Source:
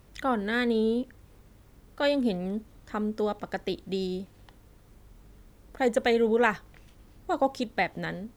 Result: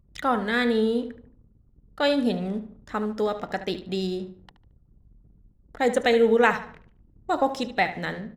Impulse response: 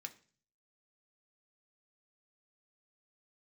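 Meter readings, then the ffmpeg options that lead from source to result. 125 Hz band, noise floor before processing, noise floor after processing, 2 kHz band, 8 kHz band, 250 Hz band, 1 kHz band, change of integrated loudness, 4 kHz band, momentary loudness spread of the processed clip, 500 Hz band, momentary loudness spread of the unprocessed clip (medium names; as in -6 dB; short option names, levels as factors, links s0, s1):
+2.5 dB, -57 dBFS, -60 dBFS, +4.0 dB, +4.0 dB, +2.5 dB, +4.5 dB, +3.5 dB, +5.0 dB, 14 LU, +3.5 dB, 13 LU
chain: -filter_complex "[0:a]asplit=2[s0][s1];[1:a]atrim=start_sample=2205,asetrate=22932,aresample=44100[s2];[s1][s2]afir=irnorm=-1:irlink=0,volume=0.708[s3];[s0][s3]amix=inputs=2:normalize=0,anlmdn=0.0158,asplit=2[s4][s5];[s5]adelay=74,lowpass=f=4500:p=1,volume=0.251,asplit=2[s6][s7];[s7]adelay=74,lowpass=f=4500:p=1,volume=0.32,asplit=2[s8][s9];[s9]adelay=74,lowpass=f=4500:p=1,volume=0.32[s10];[s4][s6][s8][s10]amix=inputs=4:normalize=0"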